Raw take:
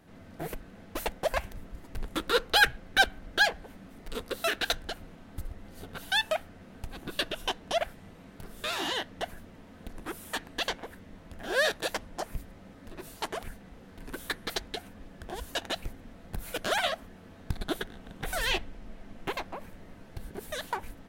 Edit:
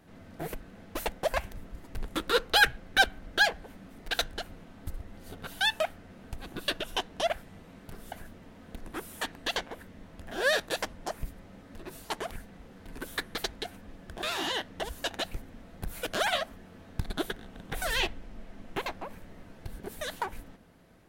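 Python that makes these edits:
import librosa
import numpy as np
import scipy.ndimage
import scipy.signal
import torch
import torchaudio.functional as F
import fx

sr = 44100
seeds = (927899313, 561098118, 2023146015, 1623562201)

y = fx.edit(x, sr, fx.cut(start_s=4.11, length_s=0.51),
    fx.move(start_s=8.63, length_s=0.61, to_s=15.34), tone=tone)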